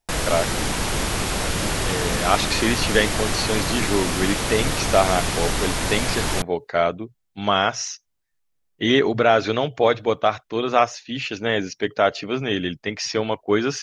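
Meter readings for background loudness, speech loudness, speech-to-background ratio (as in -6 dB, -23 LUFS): -23.5 LUFS, -22.5 LUFS, 1.0 dB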